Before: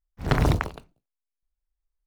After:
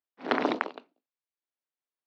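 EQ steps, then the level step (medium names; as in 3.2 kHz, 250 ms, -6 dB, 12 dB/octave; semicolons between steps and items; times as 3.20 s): elliptic high-pass 250 Hz, stop band 80 dB; low-pass 4.3 kHz 24 dB/octave; 0.0 dB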